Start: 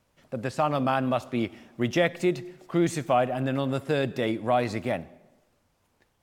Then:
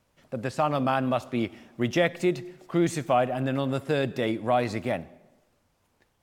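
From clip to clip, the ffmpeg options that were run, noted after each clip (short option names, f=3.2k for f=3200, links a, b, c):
-af anull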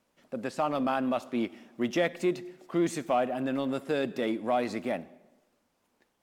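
-filter_complex "[0:a]lowshelf=f=160:t=q:w=1.5:g=-9.5,asplit=2[a][b];[b]volume=24.5dB,asoftclip=hard,volume=-24.5dB,volume=-10.5dB[c];[a][c]amix=inputs=2:normalize=0,volume=-5.5dB"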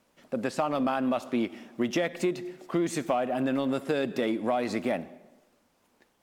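-af "acompressor=threshold=-29dB:ratio=6,volume=5.5dB"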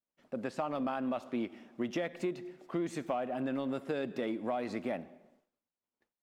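-af "highshelf=f=4.9k:g=-8.5,agate=range=-33dB:threshold=-55dB:ratio=3:detection=peak,volume=-7dB"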